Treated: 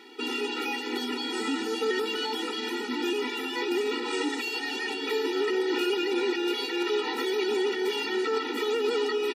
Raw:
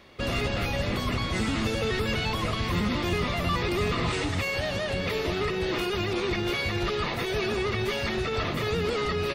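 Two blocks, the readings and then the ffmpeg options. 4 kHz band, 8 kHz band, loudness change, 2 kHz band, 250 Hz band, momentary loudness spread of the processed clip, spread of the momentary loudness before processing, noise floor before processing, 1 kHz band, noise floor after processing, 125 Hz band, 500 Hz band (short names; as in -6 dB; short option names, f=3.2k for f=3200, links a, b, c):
+0.5 dB, -0.5 dB, -0.5 dB, -1.5 dB, -0.5 dB, 4 LU, 2 LU, -30 dBFS, -2.0 dB, -34 dBFS, under -35 dB, +1.5 dB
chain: -filter_complex "[0:a]alimiter=limit=-23dB:level=0:latency=1:release=254,asplit=2[a][b];[b]asplit=5[c][d][e][f][g];[c]adelay=193,afreqshift=44,volume=-18.5dB[h];[d]adelay=386,afreqshift=88,volume=-23.7dB[i];[e]adelay=579,afreqshift=132,volume=-28.9dB[j];[f]adelay=772,afreqshift=176,volume=-34.1dB[k];[g]adelay=965,afreqshift=220,volume=-39.3dB[l];[h][i][j][k][l]amix=inputs=5:normalize=0[m];[a][m]amix=inputs=2:normalize=0,afftfilt=real='re*eq(mod(floor(b*sr/1024/250),2),1)':imag='im*eq(mod(floor(b*sr/1024/250),2),1)':win_size=1024:overlap=0.75,volume=7dB"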